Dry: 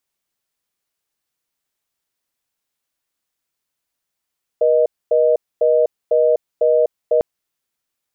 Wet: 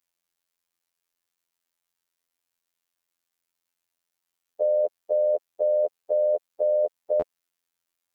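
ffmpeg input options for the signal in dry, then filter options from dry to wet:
-f lavfi -i "aevalsrc='0.2*(sin(2*PI*480*t)+sin(2*PI*620*t))*clip(min(mod(t,0.5),0.25-mod(t,0.5))/0.005,0,1)':d=2.6:s=44100"
-af "afftfilt=real='hypot(re,im)*cos(PI*b)':imag='0':win_size=2048:overlap=0.75,lowshelf=f=400:g=-5"

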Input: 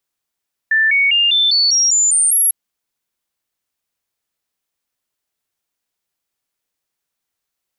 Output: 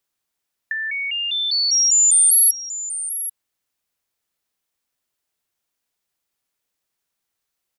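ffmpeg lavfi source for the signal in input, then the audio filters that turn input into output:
-f lavfi -i "aevalsrc='0.299*clip(min(mod(t,0.2),0.2-mod(t,0.2))/0.005,0,1)*sin(2*PI*1770*pow(2,floor(t/0.2)/3)*mod(t,0.2))':d=1.8:s=44100"
-filter_complex "[0:a]acrossover=split=5500[s0][s1];[s0]acompressor=threshold=0.0501:ratio=6[s2];[s1]aecho=1:1:787:0.251[s3];[s2][s3]amix=inputs=2:normalize=0"

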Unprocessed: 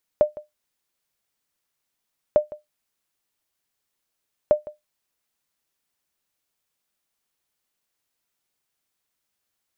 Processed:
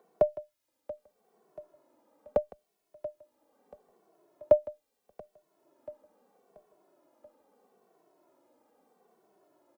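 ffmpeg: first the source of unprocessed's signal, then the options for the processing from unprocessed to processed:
-f lavfi -i "aevalsrc='0.422*(sin(2*PI*602*mod(t,2.15))*exp(-6.91*mod(t,2.15)/0.16)+0.106*sin(2*PI*602*max(mod(t,2.15)-0.16,0))*exp(-6.91*max(mod(t,2.15)-0.16,0)/0.16))':d=6.45:s=44100"
-filter_complex "[0:a]acrossover=split=100|240|790[s0][s1][s2][s3];[s2]acompressor=mode=upward:threshold=0.0112:ratio=2.5[s4];[s0][s1][s4][s3]amix=inputs=4:normalize=0,aecho=1:1:683|1366|2049|2732:0.133|0.068|0.0347|0.0177,asplit=2[s5][s6];[s6]adelay=2.2,afreqshift=-0.77[s7];[s5][s7]amix=inputs=2:normalize=1"

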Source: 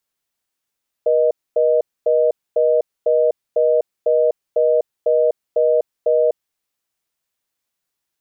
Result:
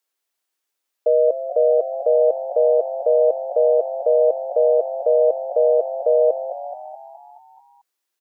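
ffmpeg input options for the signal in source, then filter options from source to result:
-f lavfi -i "aevalsrc='0.178*(sin(2*PI*480*t)+sin(2*PI*620*t))*clip(min(mod(t,0.5),0.25-mod(t,0.5))/0.005,0,1)':d=5.27:s=44100"
-filter_complex "[0:a]highpass=f=290:w=0.5412,highpass=f=290:w=1.3066,asplit=2[s0][s1];[s1]asplit=7[s2][s3][s4][s5][s6][s7][s8];[s2]adelay=215,afreqshift=47,volume=0.251[s9];[s3]adelay=430,afreqshift=94,volume=0.151[s10];[s4]adelay=645,afreqshift=141,volume=0.0902[s11];[s5]adelay=860,afreqshift=188,volume=0.0543[s12];[s6]adelay=1075,afreqshift=235,volume=0.0327[s13];[s7]adelay=1290,afreqshift=282,volume=0.0195[s14];[s8]adelay=1505,afreqshift=329,volume=0.0117[s15];[s9][s10][s11][s12][s13][s14][s15]amix=inputs=7:normalize=0[s16];[s0][s16]amix=inputs=2:normalize=0"

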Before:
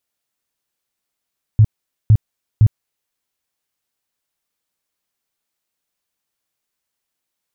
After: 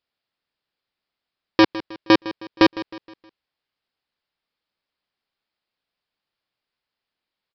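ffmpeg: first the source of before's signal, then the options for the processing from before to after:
-f lavfi -i "aevalsrc='0.531*sin(2*PI*108*mod(t,0.51))*lt(mod(t,0.51),6/108)':d=1.53:s=44100"
-af "lowshelf=f=160:g=-2,aresample=11025,aeval=exprs='(mod(2.51*val(0)+1,2)-1)/2.51':c=same,aresample=44100,aecho=1:1:157|314|471|628:0.158|0.0682|0.0293|0.0126"

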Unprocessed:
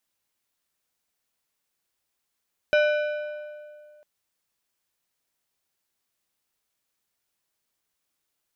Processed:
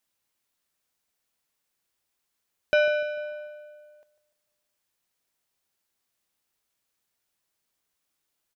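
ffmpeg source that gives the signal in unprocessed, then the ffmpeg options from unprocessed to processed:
-f lavfi -i "aevalsrc='0.15*pow(10,-3*t/2.22)*sin(2*PI*599*t)+0.0794*pow(10,-3*t/1.686)*sin(2*PI*1497.5*t)+0.0422*pow(10,-3*t/1.465)*sin(2*PI*2396*t)+0.0224*pow(10,-3*t/1.37)*sin(2*PI*2995*t)+0.0119*pow(10,-3*t/1.266)*sin(2*PI*3893.5*t)+0.00631*pow(10,-3*t/1.168)*sin(2*PI*5091.5*t)+0.00335*pow(10,-3*t/1.148)*sin(2*PI*5391*t)+0.00178*pow(10,-3*t/1.113)*sin(2*PI*5990*t)':d=1.3:s=44100"
-filter_complex "[0:a]asplit=2[s0][s1];[s1]adelay=148,lowpass=f=2000:p=1,volume=0.188,asplit=2[s2][s3];[s3]adelay=148,lowpass=f=2000:p=1,volume=0.51,asplit=2[s4][s5];[s5]adelay=148,lowpass=f=2000:p=1,volume=0.51,asplit=2[s6][s7];[s7]adelay=148,lowpass=f=2000:p=1,volume=0.51,asplit=2[s8][s9];[s9]adelay=148,lowpass=f=2000:p=1,volume=0.51[s10];[s0][s2][s4][s6][s8][s10]amix=inputs=6:normalize=0"

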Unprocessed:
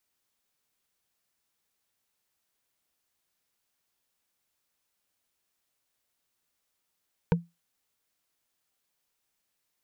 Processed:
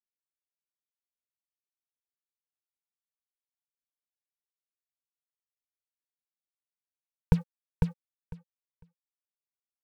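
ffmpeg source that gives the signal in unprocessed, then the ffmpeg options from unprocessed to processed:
-f lavfi -i "aevalsrc='0.158*pow(10,-3*t/0.21)*sin(2*PI*170*t)+0.106*pow(10,-3*t/0.062)*sin(2*PI*468.7*t)+0.0708*pow(10,-3*t/0.028)*sin(2*PI*918.7*t)+0.0473*pow(10,-3*t/0.015)*sin(2*PI*1518.6*t)+0.0316*pow(10,-3*t/0.009)*sin(2*PI*2267.8*t)':d=0.45:s=44100"
-af "asubboost=boost=7:cutoff=100,acrusher=bits=6:mix=0:aa=0.5,aecho=1:1:501|1002|1503:0.631|0.0946|0.0142"

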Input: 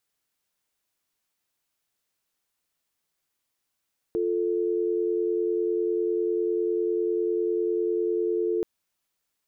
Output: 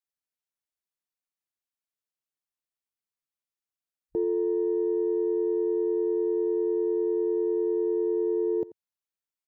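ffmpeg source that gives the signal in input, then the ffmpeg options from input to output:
-f lavfi -i "aevalsrc='0.0531*(sin(2*PI*350*t)+sin(2*PI*440*t))':d=4.48:s=44100"
-af "afwtdn=0.0126,aecho=1:1:87:0.106"

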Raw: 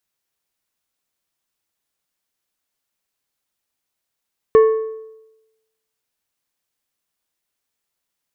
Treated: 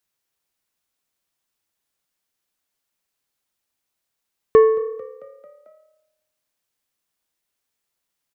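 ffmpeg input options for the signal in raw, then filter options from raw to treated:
-f lavfi -i "aevalsrc='0.562*pow(10,-3*t/0.98)*sin(2*PI*441*t)+0.141*pow(10,-3*t/0.744)*sin(2*PI*1102.5*t)+0.0355*pow(10,-3*t/0.647)*sin(2*PI*1764*t)+0.00891*pow(10,-3*t/0.605)*sin(2*PI*2205*t)+0.00224*pow(10,-3*t/0.559)*sin(2*PI*2866.5*t)':d=1.55:s=44100"
-filter_complex "[0:a]asplit=6[s0][s1][s2][s3][s4][s5];[s1]adelay=222,afreqshift=36,volume=0.0708[s6];[s2]adelay=444,afreqshift=72,volume=0.0437[s7];[s3]adelay=666,afreqshift=108,volume=0.0272[s8];[s4]adelay=888,afreqshift=144,volume=0.0168[s9];[s5]adelay=1110,afreqshift=180,volume=0.0105[s10];[s0][s6][s7][s8][s9][s10]amix=inputs=6:normalize=0"

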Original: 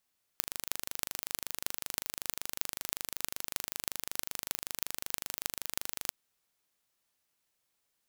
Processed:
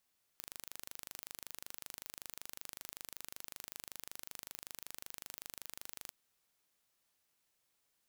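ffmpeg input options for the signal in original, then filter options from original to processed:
-f lavfi -i "aevalsrc='0.75*eq(mod(n,1743),0)*(0.5+0.5*eq(mod(n,13944),0))':d=5.72:s=44100"
-af "asoftclip=type=tanh:threshold=0.126"

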